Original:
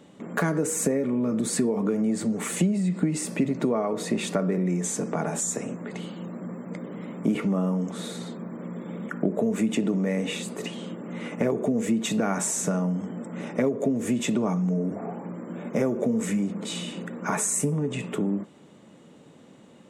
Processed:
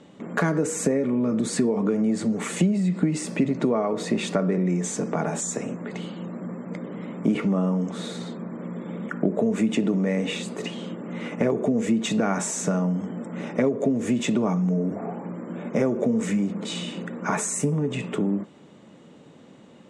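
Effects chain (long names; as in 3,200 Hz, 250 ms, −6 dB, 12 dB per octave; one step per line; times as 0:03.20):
low-pass filter 7,000 Hz 12 dB per octave
level +2 dB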